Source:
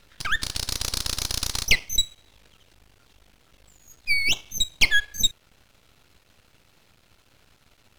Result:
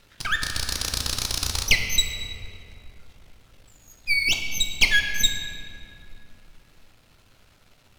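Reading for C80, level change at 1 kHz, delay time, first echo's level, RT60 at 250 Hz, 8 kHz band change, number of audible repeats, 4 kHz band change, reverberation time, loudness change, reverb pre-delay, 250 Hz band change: 6.5 dB, +1.5 dB, no echo, no echo, 3.7 s, +0.5 dB, no echo, +1.0 dB, 3.0 s, +0.5 dB, 9 ms, +2.0 dB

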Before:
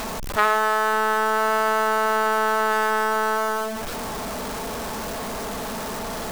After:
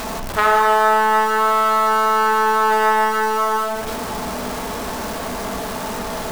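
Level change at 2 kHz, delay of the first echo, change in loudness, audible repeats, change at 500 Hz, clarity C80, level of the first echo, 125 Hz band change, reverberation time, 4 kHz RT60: +2.5 dB, no echo, +5.0 dB, no echo, +3.5 dB, 7.0 dB, no echo, +4.0 dB, 1.2 s, 1.1 s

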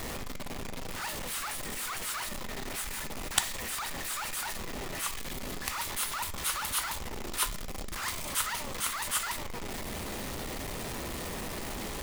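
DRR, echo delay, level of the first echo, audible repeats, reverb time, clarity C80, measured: 9.0 dB, no echo, no echo, no echo, 0.50 s, 20.0 dB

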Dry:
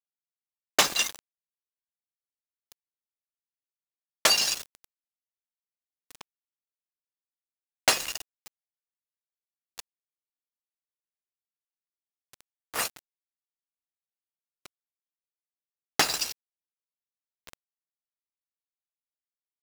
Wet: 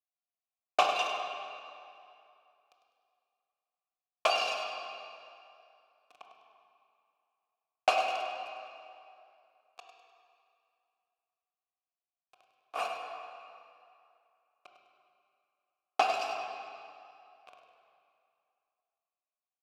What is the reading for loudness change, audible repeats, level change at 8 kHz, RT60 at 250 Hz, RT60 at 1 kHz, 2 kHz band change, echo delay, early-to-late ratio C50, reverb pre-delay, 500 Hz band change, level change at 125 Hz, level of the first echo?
-7.0 dB, 1, -20.0 dB, 2.3 s, 2.6 s, -5.0 dB, 101 ms, 2.0 dB, 18 ms, +2.5 dB, under -15 dB, -10.0 dB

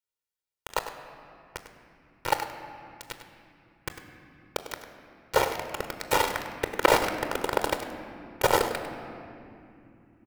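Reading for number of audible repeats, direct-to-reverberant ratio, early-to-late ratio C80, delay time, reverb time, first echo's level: 1, 6.5 dB, 7.5 dB, 100 ms, 2.9 s, -12.0 dB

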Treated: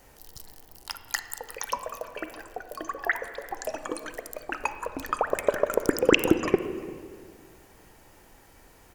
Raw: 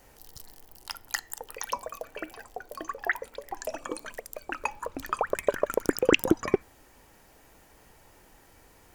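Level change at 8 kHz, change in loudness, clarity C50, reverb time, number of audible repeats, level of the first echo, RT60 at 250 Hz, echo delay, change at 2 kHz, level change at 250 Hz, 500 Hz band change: +1.5 dB, +2.0 dB, 10.0 dB, 2.0 s, 1, -22.5 dB, 2.5 s, 347 ms, +2.0 dB, +2.5 dB, +2.5 dB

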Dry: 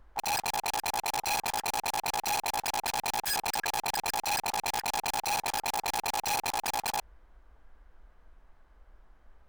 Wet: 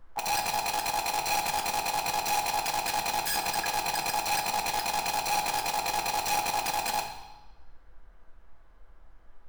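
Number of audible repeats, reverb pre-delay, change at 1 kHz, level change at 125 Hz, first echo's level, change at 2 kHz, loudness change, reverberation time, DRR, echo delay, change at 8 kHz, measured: no echo, 6 ms, +3.0 dB, +2.5 dB, no echo, +2.0 dB, +2.0 dB, 1.1 s, 2.5 dB, no echo, +1.5 dB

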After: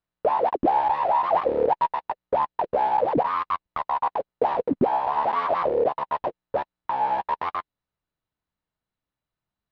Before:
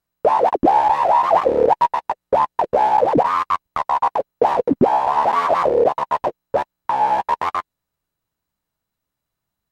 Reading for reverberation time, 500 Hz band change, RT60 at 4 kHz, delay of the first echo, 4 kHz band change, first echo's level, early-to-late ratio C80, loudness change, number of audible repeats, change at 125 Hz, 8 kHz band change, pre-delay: no reverb, -6.5 dB, no reverb, no echo, -7.5 dB, no echo, no reverb, -6.5 dB, no echo, -6.5 dB, no reading, no reverb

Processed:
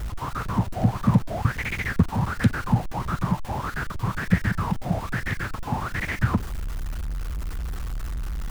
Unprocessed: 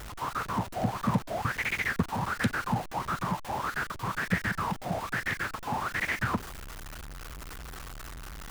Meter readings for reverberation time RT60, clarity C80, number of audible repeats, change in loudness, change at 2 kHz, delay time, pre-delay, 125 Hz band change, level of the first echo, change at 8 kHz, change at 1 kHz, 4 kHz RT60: no reverb, no reverb, no echo, +4.5 dB, +0.5 dB, no echo, no reverb, +11.0 dB, no echo, 0.0 dB, +1.0 dB, no reverb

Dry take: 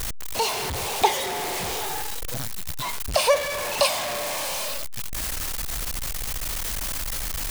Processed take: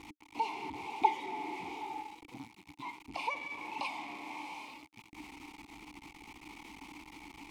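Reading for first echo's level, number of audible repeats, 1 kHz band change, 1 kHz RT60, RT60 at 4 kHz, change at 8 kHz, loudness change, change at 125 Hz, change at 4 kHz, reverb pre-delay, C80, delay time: no echo, no echo, -8.0 dB, no reverb, no reverb, -31.0 dB, -14.0 dB, -22.5 dB, -21.5 dB, no reverb, no reverb, no echo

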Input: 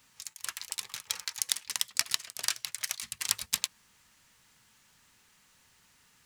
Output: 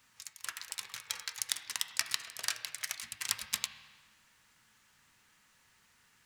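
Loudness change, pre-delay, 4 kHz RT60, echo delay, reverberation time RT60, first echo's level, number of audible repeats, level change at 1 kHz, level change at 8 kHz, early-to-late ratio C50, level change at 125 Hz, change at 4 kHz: -4.0 dB, 6 ms, 1.4 s, no echo, 1.4 s, no echo, no echo, -1.5 dB, -5.0 dB, 9.5 dB, -3.5 dB, -4.0 dB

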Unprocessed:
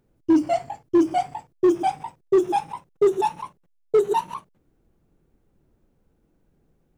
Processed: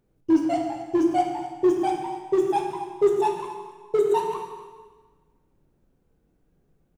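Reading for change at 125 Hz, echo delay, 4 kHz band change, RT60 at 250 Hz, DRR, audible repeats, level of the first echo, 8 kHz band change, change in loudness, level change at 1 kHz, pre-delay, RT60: -1.0 dB, 254 ms, -1.5 dB, 1.4 s, 2.5 dB, 1, -15.0 dB, no reading, -1.5 dB, -1.0 dB, 7 ms, 1.4 s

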